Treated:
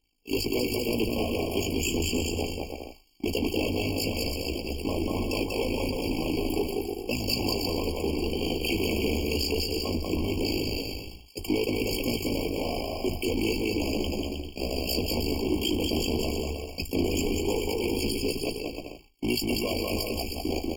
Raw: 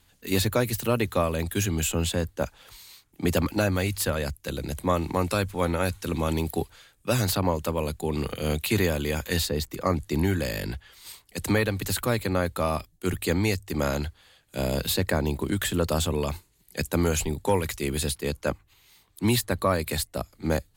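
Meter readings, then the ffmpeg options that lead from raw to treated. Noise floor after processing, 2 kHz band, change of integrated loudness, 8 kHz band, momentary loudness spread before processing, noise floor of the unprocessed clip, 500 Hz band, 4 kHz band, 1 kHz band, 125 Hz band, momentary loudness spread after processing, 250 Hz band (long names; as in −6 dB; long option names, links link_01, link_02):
−46 dBFS, −3.0 dB, −2.0 dB, −4.5 dB, 8 LU, −63 dBFS, −1.5 dB, +2.5 dB, −6.5 dB, −6.0 dB, 6 LU, 0.0 dB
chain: -filter_complex "[0:a]aeval=exprs='val(0)+0.5*0.0355*sgn(val(0))':channel_layout=same,aphaser=in_gain=1:out_gain=1:delay=2.9:decay=0.3:speed=1:type=triangular,agate=range=-37dB:threshold=-30dB:ratio=16:detection=peak,asplit=2[link_01][link_02];[link_02]acrusher=bits=3:mix=0:aa=0.000001,volume=-7dB[link_03];[link_01][link_03]amix=inputs=2:normalize=0,tremolo=f=54:d=0.974,aecho=1:1:2.6:0.4,asplit=2[link_04][link_05];[link_05]aecho=0:1:190|313.5|393.8|446|479.9:0.631|0.398|0.251|0.158|0.1[link_06];[link_04][link_06]amix=inputs=2:normalize=0,flanger=delay=6.5:depth=7.6:regen=-60:speed=0.16:shape=triangular,asoftclip=type=tanh:threshold=-23dB,equalizer=frequency=125:width_type=o:width=1:gain=-11,equalizer=frequency=250:width_type=o:width=1:gain=8,equalizer=frequency=1000:width_type=o:width=1:gain=-5,equalizer=frequency=4000:width_type=o:width=1:gain=11,equalizer=frequency=8000:width_type=o:width=1:gain=-3,afftfilt=real='re*eq(mod(floor(b*sr/1024/1100),2),0)':imag='im*eq(mod(floor(b*sr/1024/1100),2),0)':win_size=1024:overlap=0.75,volume=1.5dB"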